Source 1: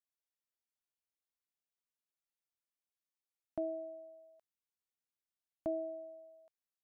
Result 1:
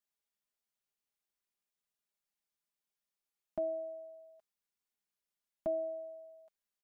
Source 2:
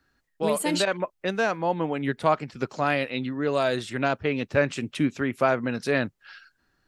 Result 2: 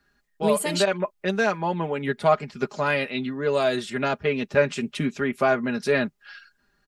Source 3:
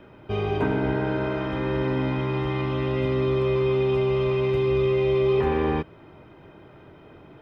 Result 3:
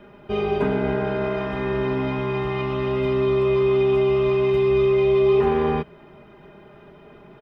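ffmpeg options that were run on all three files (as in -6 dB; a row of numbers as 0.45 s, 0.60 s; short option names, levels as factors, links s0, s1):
-af "aecho=1:1:4.9:0.71"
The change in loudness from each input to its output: +2.5 LU, +1.5 LU, +3.0 LU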